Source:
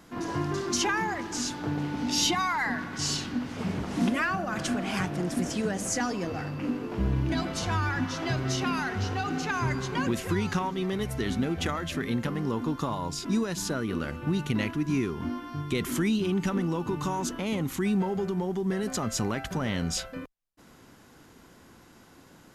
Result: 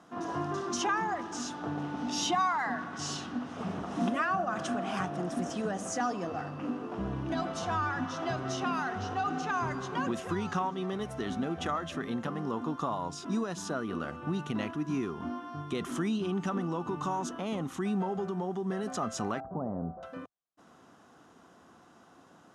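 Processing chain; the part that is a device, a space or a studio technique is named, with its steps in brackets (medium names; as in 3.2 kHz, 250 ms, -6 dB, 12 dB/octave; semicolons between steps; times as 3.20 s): 19.40–20.03 s: inverse Chebyshev low-pass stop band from 3 kHz, stop band 60 dB; car door speaker (cabinet simulation 110–9100 Hz, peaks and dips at 120 Hz -5 dB, 710 Hz +8 dB, 1.2 kHz +7 dB, 2.2 kHz -7 dB, 4.5 kHz -7 dB, 7.5 kHz -5 dB); trim -4.5 dB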